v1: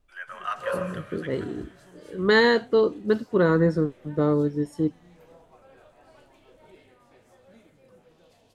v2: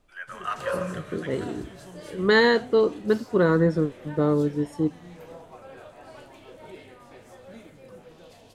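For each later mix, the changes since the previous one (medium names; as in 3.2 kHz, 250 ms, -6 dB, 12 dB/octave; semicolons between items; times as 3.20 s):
background +9.0 dB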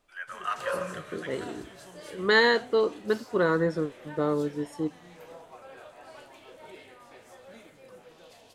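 master: add bass shelf 320 Hz -11.5 dB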